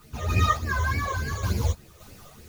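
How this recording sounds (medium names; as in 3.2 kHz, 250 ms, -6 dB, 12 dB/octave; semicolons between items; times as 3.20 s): phasing stages 12, 3.4 Hz, lowest notch 250–1200 Hz; a quantiser's noise floor 10-bit, dither triangular; random-step tremolo; a shimmering, thickened sound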